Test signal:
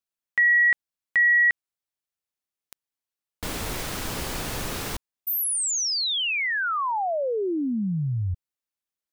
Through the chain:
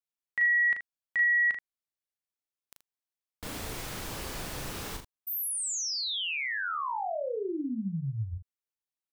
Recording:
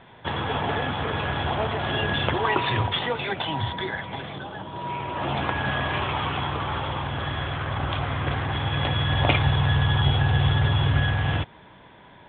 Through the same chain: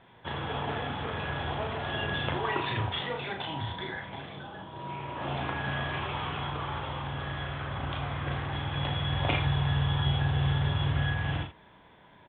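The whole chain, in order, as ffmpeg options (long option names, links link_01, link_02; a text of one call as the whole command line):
ffmpeg -i in.wav -af "aecho=1:1:36|79:0.596|0.282,volume=-8.5dB" out.wav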